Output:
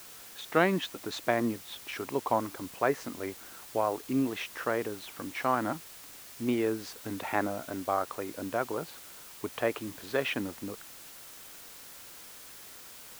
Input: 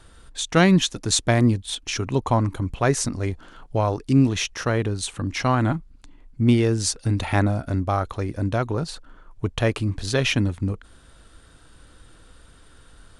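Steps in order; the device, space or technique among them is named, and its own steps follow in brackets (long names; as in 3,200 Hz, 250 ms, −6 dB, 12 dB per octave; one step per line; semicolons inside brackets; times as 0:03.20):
wax cylinder (band-pass filter 340–2,200 Hz; tape wow and flutter; white noise bed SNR 15 dB)
level −4.5 dB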